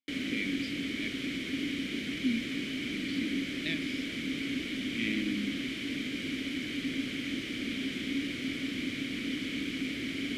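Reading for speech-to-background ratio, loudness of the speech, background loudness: -3.5 dB, -38.0 LUFS, -34.5 LUFS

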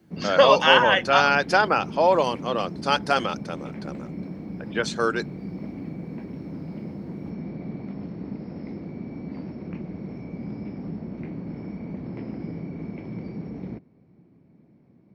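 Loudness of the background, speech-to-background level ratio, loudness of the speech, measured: -35.5 LUFS, 15.0 dB, -20.5 LUFS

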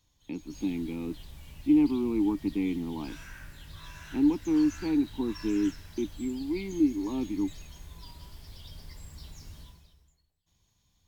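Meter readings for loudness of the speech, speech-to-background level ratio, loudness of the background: -29.5 LUFS, 17.5 dB, -47.0 LUFS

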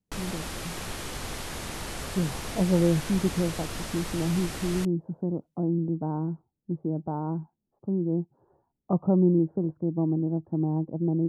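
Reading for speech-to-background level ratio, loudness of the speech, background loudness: 7.0 dB, -28.5 LUFS, -35.5 LUFS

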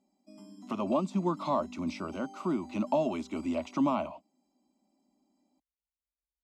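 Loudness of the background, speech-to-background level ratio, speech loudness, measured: -50.0 LUFS, 17.5 dB, -32.5 LUFS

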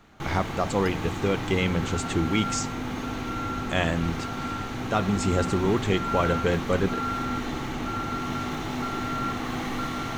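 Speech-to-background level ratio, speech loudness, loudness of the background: 4.0 dB, -27.0 LUFS, -31.0 LUFS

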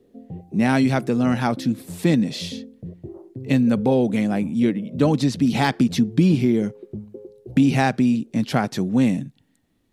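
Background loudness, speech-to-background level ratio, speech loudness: -38.0 LUFS, 17.5 dB, -20.5 LUFS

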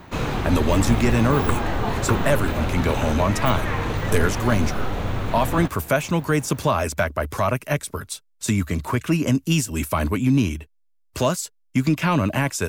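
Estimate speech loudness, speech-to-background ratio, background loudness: -23.0 LUFS, 3.0 dB, -26.0 LUFS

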